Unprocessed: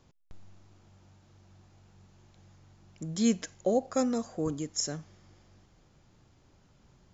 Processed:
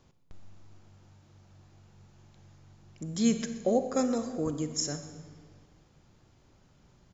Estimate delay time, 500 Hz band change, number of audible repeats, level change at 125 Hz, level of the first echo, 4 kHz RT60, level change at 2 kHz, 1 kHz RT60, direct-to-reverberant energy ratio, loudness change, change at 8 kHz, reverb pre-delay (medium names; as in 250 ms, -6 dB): 124 ms, +0.5 dB, 1, +1.0 dB, -18.0 dB, 1.1 s, +0.5 dB, 1.5 s, 8.5 dB, +0.5 dB, no reading, 35 ms